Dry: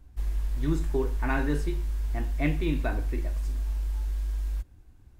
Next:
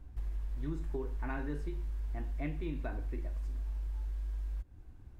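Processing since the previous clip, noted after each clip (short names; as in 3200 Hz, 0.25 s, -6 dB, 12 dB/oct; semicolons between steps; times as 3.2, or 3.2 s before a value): high shelf 3200 Hz -9.5 dB; compressor 3:1, threshold -39 dBFS, peak gain reduction 13.5 dB; gain +1.5 dB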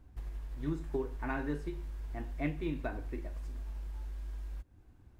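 low shelf 63 Hz -10 dB; upward expander 1.5:1, over -49 dBFS; gain +5.5 dB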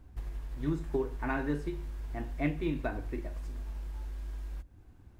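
reverb, pre-delay 48 ms, DRR 23.5 dB; gain +3.5 dB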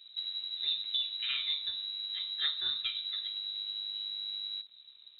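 crackle 98/s -55 dBFS; inverted band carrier 3900 Hz; gain -2.5 dB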